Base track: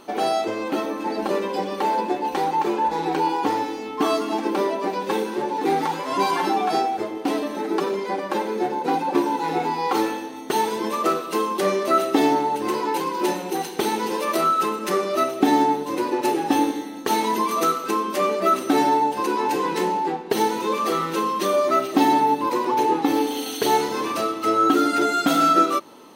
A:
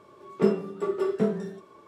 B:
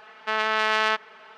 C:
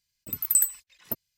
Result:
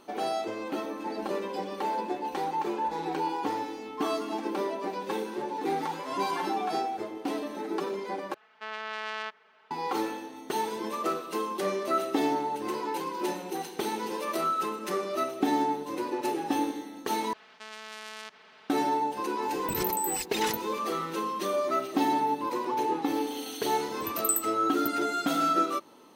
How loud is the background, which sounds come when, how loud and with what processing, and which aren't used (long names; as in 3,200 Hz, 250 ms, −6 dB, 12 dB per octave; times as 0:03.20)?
base track −8.5 dB
0:08.34: overwrite with B −13 dB
0:17.33: overwrite with B −16 dB + every bin compressed towards the loudest bin 2 to 1
0:19.42: mix in C −15.5 dB + envelope flattener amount 100%
0:23.74: mix in C −6 dB
not used: A